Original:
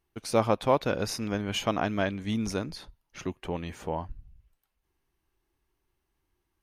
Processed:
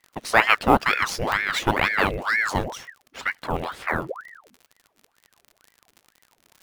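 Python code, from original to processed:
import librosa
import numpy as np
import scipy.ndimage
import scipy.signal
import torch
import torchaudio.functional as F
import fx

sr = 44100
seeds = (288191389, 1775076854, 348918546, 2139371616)

p1 = fx.sample_hold(x, sr, seeds[0], rate_hz=12000.0, jitter_pct=0)
p2 = x + F.gain(torch.from_numpy(p1), -8.5).numpy()
p3 = fx.dmg_crackle(p2, sr, seeds[1], per_s=79.0, level_db=-40.0)
p4 = fx.buffer_glitch(p3, sr, at_s=(1.27,), block=256, repeats=8)
p5 = fx.ring_lfo(p4, sr, carrier_hz=1100.0, swing_pct=80, hz=2.1)
y = F.gain(torch.from_numpy(p5), 6.5).numpy()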